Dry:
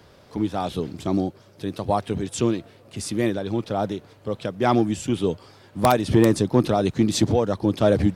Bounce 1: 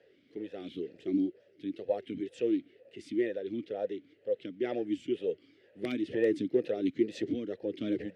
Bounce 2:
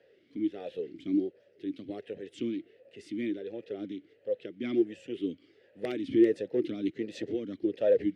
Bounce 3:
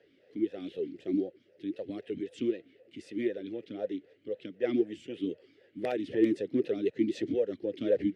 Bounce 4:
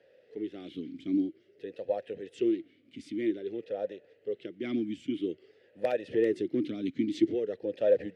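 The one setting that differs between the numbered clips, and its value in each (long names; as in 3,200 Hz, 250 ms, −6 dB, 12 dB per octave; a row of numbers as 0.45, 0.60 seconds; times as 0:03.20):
formant filter swept between two vowels, speed: 2.1, 1.4, 3.9, 0.51 Hertz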